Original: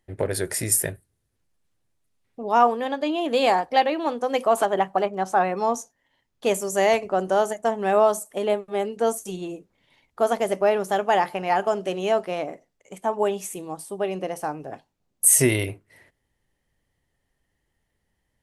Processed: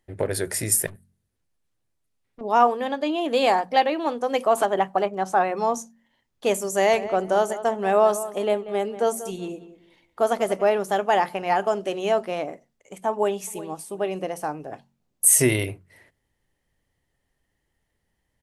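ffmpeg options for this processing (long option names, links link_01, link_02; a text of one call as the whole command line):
ffmpeg -i in.wav -filter_complex "[0:a]asettb=1/sr,asplit=3[link_01][link_02][link_03];[link_01]atrim=end=0.864[link_04];[link_02]atrim=start=0.86:end=2.41,asetpts=PTS-STARTPTS,afade=type=in:duration=0.004:curve=qsin,afade=type=out:start_time=1.546:duration=0.004:curve=qsin,aeval=exprs='(tanh(100*val(0)+0.6)-tanh(0.6))/100':channel_layout=same[link_05];[link_03]atrim=start=2.406[link_06];[link_04][link_05]acrossfade=duration=0.004:curve1=hsin:curve2=qsin[link_07];[link_07][link_06]acrossfade=duration=0.004:curve1=qsin:curve2=hsin,asettb=1/sr,asplit=3[link_08][link_09][link_10];[link_08]atrim=end=6.744[link_11];[link_09]atrim=start=6.74:end=10.7,asetpts=PTS-STARTPTS,afade=type=in:duration=0.004:curve=qsin,afade=type=out:start_time=3.956:duration=0.004:curve=qsin,asplit=2[link_12][link_13];[link_13]adelay=188,lowpass=frequency=2400:poles=1,volume=-13.5dB,asplit=2[link_14][link_15];[link_15]adelay=188,lowpass=frequency=2400:poles=1,volume=0.26,asplit=2[link_16][link_17];[link_17]adelay=188,lowpass=frequency=2400:poles=1,volume=0.26[link_18];[link_12][link_14][link_16][link_18]amix=inputs=4:normalize=0,atrim=end_sample=174636[link_19];[link_10]atrim=start=10.696[link_20];[link_11][link_19]acrossfade=duration=0.004:curve1=hsin:curve2=qsin[link_21];[link_21][link_20]acrossfade=duration=0.004:curve1=qsin:curve2=hsin,asplit=2[link_22][link_23];[link_23]afade=type=in:start_time=13.11:duration=0.01,afade=type=out:start_time=13.71:duration=0.01,aecho=0:1:360|720:0.149624|0.0224435[link_24];[link_22][link_24]amix=inputs=2:normalize=0,bandreject=frequency=45.74:width_type=h:width=4,bandreject=frequency=91.48:width_type=h:width=4,bandreject=frequency=137.22:width_type=h:width=4,bandreject=frequency=182.96:width_type=h:width=4,bandreject=frequency=228.7:width_type=h:width=4" out.wav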